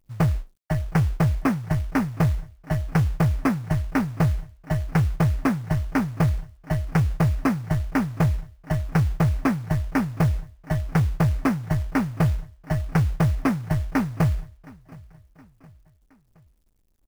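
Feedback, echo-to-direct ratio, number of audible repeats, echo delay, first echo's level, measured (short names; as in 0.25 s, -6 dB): 50%, -22.5 dB, 2, 0.718 s, -23.5 dB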